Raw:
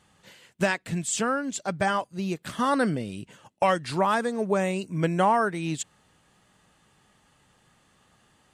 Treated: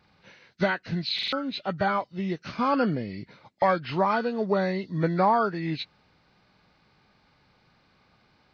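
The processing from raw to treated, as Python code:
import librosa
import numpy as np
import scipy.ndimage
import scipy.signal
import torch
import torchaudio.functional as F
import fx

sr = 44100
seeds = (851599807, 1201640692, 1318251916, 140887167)

y = fx.freq_compress(x, sr, knee_hz=1200.0, ratio=1.5)
y = fx.buffer_glitch(y, sr, at_s=(1.14,), block=2048, repeats=3)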